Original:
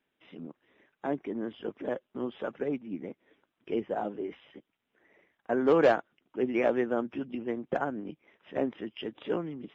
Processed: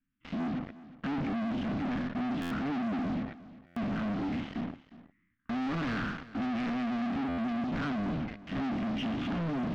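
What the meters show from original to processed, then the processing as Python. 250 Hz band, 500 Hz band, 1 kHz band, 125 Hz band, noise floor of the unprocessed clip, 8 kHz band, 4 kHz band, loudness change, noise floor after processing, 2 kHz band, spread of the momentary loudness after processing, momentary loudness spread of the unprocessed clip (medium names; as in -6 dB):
+3.5 dB, -12.5 dB, -1.5 dB, +8.5 dB, -82 dBFS, no reading, +3.5 dB, -2.0 dB, -73 dBFS, 0.0 dB, 7 LU, 16 LU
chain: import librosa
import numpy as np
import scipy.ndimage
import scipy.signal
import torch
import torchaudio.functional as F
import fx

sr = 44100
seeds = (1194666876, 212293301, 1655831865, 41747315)

p1 = fx.spec_trails(x, sr, decay_s=0.55)
p2 = scipy.signal.sosfilt(scipy.signal.ellip(3, 1.0, 40, [270.0, 1200.0], 'bandstop', fs=sr, output='sos'), p1)
p3 = fx.tilt_eq(p2, sr, slope=-3.5)
p4 = fx.hum_notches(p3, sr, base_hz=50, count=3)
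p5 = fx.level_steps(p4, sr, step_db=12)
p6 = p4 + (p5 * 10.0 ** (0.0 / 20.0))
p7 = fx.leveller(p6, sr, passes=5)
p8 = np.clip(10.0 ** (31.0 / 20.0) * p7, -1.0, 1.0) / 10.0 ** (31.0 / 20.0)
p9 = fx.air_absorb(p8, sr, metres=220.0)
p10 = p9 + fx.echo_single(p9, sr, ms=359, db=-17.5, dry=0)
y = fx.buffer_glitch(p10, sr, at_s=(2.41, 3.66, 7.28), block=512, repeats=8)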